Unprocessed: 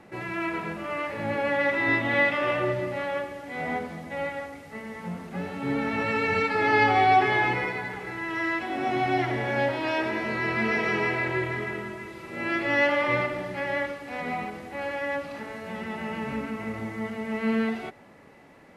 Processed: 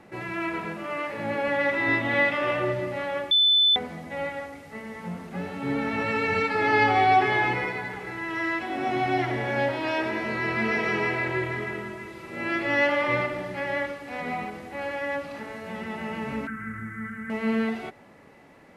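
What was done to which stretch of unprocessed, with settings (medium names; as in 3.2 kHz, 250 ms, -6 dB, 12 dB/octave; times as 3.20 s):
0.65–1.48 s: high-pass 120 Hz
3.31–3.76 s: bleep 3.51 kHz -16 dBFS
16.47–17.30 s: FFT filter 190 Hz 0 dB, 660 Hz -23 dB, 970 Hz -16 dB, 1.5 kHz +13 dB, 2.7 kHz -14 dB, 4.3 kHz -21 dB, 8.2 kHz -4 dB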